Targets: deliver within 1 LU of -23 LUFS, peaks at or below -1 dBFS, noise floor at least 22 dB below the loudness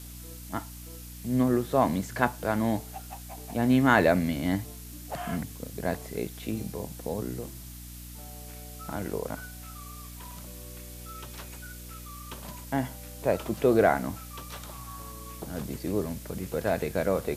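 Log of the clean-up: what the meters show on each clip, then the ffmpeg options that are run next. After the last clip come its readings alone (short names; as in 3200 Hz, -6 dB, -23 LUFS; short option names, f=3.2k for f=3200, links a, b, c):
hum 60 Hz; harmonics up to 300 Hz; hum level -42 dBFS; noise floor -43 dBFS; noise floor target -51 dBFS; loudness -29.0 LUFS; peak -6.5 dBFS; loudness target -23.0 LUFS
-> -af "bandreject=f=60:t=h:w=4,bandreject=f=120:t=h:w=4,bandreject=f=180:t=h:w=4,bandreject=f=240:t=h:w=4,bandreject=f=300:t=h:w=4"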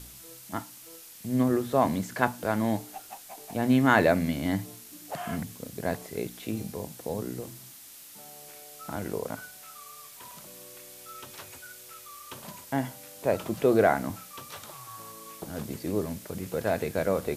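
hum none; noise floor -48 dBFS; noise floor target -51 dBFS
-> -af "afftdn=nr=6:nf=-48"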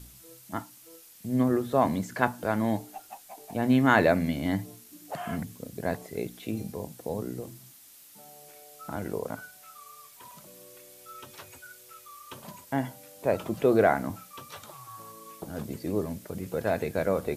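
noise floor -53 dBFS; loudness -29.0 LUFS; peak -6.0 dBFS; loudness target -23.0 LUFS
-> -af "volume=6dB,alimiter=limit=-1dB:level=0:latency=1"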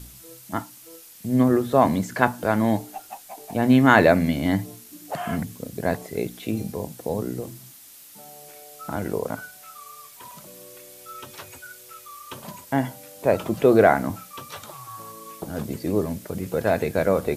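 loudness -23.0 LUFS; peak -1.0 dBFS; noise floor -47 dBFS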